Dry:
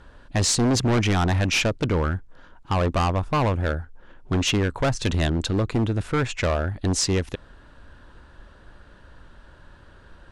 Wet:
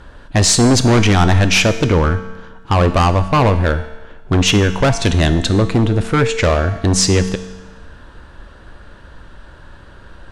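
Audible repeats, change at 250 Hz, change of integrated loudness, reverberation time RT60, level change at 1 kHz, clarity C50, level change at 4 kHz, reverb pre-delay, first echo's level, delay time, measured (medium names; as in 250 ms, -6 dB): no echo, +9.0 dB, +9.0 dB, 1.2 s, +9.0 dB, 11.5 dB, +9.0 dB, 4 ms, no echo, no echo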